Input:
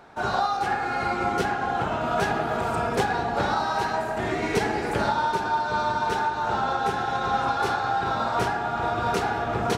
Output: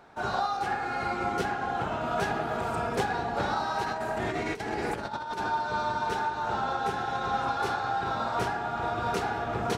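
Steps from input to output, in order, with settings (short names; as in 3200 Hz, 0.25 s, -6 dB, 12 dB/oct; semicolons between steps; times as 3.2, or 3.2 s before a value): 3.84–5.5 negative-ratio compressor -27 dBFS, ratio -0.5; gain -4.5 dB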